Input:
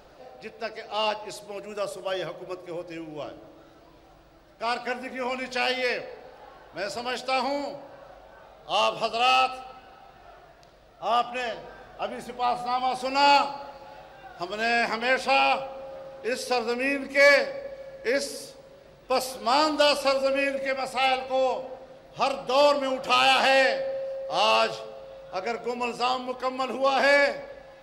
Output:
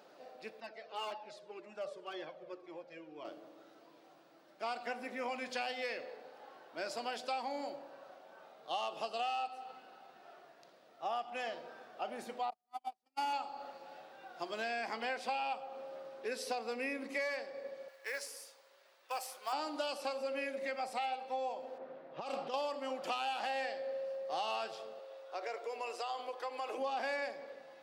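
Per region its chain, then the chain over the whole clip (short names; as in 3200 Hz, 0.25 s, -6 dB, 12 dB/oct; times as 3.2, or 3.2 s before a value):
0.6–3.25 Bessel low-pass 3800 Hz + hard clip -22 dBFS + cascading flanger falling 1.9 Hz
12.5–13.33 CVSD 64 kbps + gate -23 dBFS, range -48 dB + notch comb 530 Hz
17.88–19.53 HPF 960 Hz + dynamic EQ 4200 Hz, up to -7 dB, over -49 dBFS, Q 1.4 + short-mantissa float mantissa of 2-bit
21.78–22.54 low-pass opened by the level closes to 1600 Hz, open at -21.5 dBFS + negative-ratio compressor -32 dBFS + Doppler distortion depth 0.1 ms
24.99–26.78 steep high-pass 340 Hz + compressor, threshold -28 dBFS
whole clip: HPF 200 Hz 24 dB/oct; dynamic EQ 780 Hz, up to +7 dB, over -40 dBFS, Q 6.5; compressor 6:1, threshold -28 dBFS; gain -7 dB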